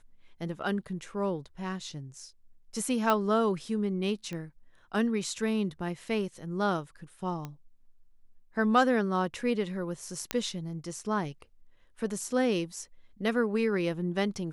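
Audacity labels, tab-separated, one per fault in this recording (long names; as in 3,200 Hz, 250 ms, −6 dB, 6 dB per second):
3.100000	3.100000	click −13 dBFS
4.330000	4.330000	click −25 dBFS
7.450000	7.450000	click −24 dBFS
10.310000	10.310000	click −12 dBFS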